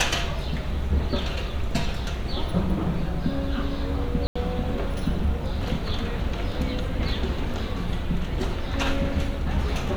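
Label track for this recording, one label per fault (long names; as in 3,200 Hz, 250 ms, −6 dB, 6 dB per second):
4.270000	4.360000	drop-out 85 ms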